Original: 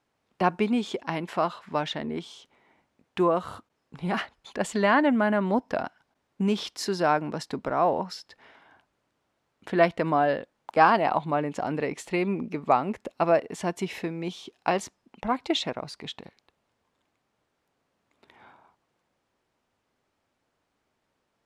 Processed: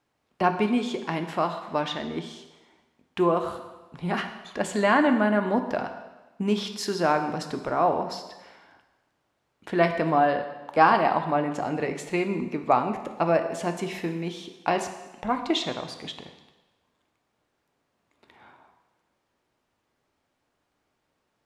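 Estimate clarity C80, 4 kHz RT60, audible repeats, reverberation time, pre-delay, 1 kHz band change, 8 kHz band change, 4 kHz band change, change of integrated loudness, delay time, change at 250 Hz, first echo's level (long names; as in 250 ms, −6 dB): 10.5 dB, 1.1 s, no echo audible, 1.2 s, 3 ms, +1.0 dB, +1.0 dB, +1.0 dB, +1.0 dB, no echo audible, +1.0 dB, no echo audible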